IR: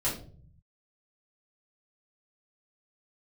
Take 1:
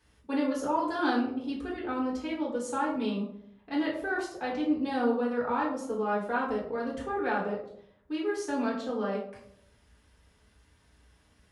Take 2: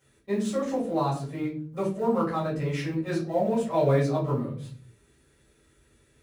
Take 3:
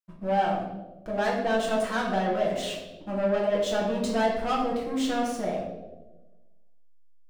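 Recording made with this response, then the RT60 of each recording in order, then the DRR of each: 2; 0.70 s, 0.50 s, 1.1 s; -5.5 dB, -8.5 dB, -4.5 dB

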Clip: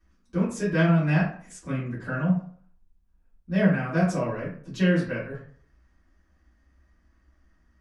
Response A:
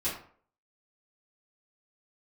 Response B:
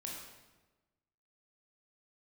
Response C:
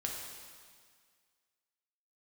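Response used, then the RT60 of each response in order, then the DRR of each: A; 0.50 s, 1.2 s, 1.8 s; -11.0 dB, -2.5 dB, -1.5 dB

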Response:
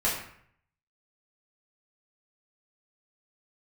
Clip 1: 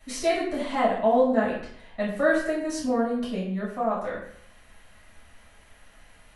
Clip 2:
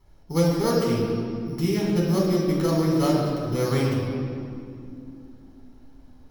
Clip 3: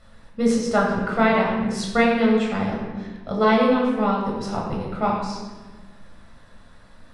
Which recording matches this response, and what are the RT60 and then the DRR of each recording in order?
1; 0.60 s, 2.6 s, 1.4 s; -7.0 dB, -3.5 dB, -3.0 dB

